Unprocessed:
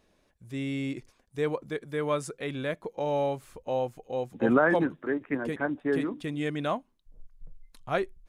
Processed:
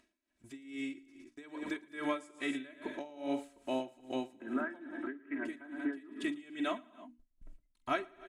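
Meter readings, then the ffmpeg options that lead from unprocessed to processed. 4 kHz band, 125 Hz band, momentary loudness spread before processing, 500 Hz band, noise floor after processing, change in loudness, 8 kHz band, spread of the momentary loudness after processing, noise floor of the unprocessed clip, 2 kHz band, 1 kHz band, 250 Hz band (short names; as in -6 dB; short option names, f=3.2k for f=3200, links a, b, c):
-4.0 dB, -23.0 dB, 11 LU, -13.0 dB, -78 dBFS, -9.5 dB, n/a, 13 LU, -69 dBFS, -8.5 dB, -9.0 dB, -7.0 dB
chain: -af "highpass=f=51:p=1,aecho=1:1:3.1:0.89,agate=range=-53dB:threshold=-49dB:ratio=16:detection=peak,bandreject=f=60:t=h:w=6,bandreject=f=120:t=h:w=6,bandreject=f=180:t=h:w=6,bandreject=f=240:t=h:w=6,bandreject=f=300:t=h:w=6,acompressor=mode=upward:threshold=-41dB:ratio=2.5,equalizer=f=125:t=o:w=1:g=-4,equalizer=f=250:t=o:w=1:g=7,equalizer=f=500:t=o:w=1:g=-12,equalizer=f=1k:t=o:w=1:g=-6,equalizer=f=8k:t=o:w=1:g=12,acompressor=threshold=-35dB:ratio=6,bass=f=250:g=-11,treble=f=4k:g=-14,aecho=1:1:46|114|185|232|286|302:0.2|0.282|0.211|0.126|0.158|0.106,aeval=exprs='val(0)*pow(10,-20*(0.5-0.5*cos(2*PI*2.4*n/s))/20)':c=same,volume=7.5dB"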